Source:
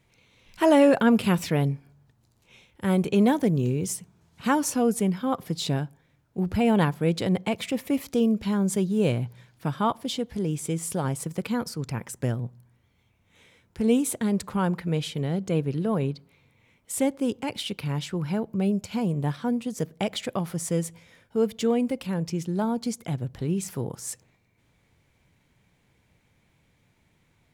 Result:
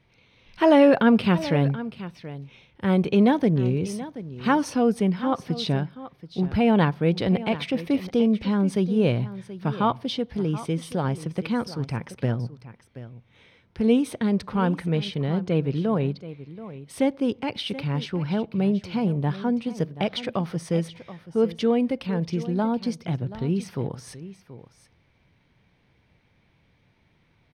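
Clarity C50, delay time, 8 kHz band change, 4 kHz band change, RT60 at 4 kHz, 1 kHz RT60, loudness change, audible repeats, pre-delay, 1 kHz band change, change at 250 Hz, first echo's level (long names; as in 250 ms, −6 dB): no reverb audible, 729 ms, −10.5 dB, +1.5 dB, no reverb audible, no reverb audible, +2.0 dB, 1, no reverb audible, +2.0 dB, +2.0 dB, −15.0 dB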